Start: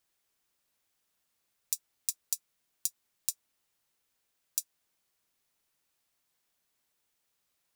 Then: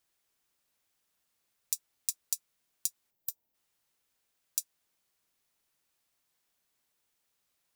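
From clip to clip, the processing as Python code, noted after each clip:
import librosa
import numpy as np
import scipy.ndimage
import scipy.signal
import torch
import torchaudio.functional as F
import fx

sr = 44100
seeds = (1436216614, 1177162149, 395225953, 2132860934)

y = fx.spec_box(x, sr, start_s=3.11, length_s=0.44, low_hz=1000.0, high_hz=12000.0, gain_db=-10)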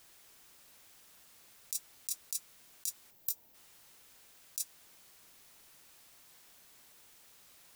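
y = fx.over_compress(x, sr, threshold_db=-42.0, ratio=-1.0)
y = y * librosa.db_to_amplitude(8.0)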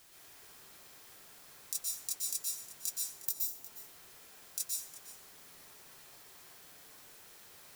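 y = x + 10.0 ** (-15.5 / 20.0) * np.pad(x, (int(359 * sr / 1000.0), 0))[:len(x)]
y = fx.rev_plate(y, sr, seeds[0], rt60_s=1.0, hf_ratio=0.4, predelay_ms=110, drr_db=-5.5)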